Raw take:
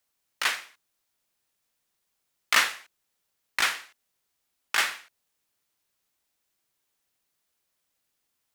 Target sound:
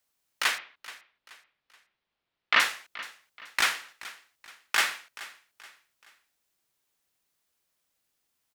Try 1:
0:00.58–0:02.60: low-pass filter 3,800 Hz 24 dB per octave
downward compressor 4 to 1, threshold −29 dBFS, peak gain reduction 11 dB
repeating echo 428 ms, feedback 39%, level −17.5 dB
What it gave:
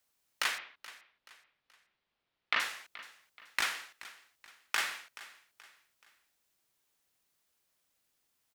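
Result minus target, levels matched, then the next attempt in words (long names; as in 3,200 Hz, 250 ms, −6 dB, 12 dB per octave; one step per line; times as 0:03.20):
downward compressor: peak gain reduction +11 dB
0:00.58–0:02.60: low-pass filter 3,800 Hz 24 dB per octave
repeating echo 428 ms, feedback 39%, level −17.5 dB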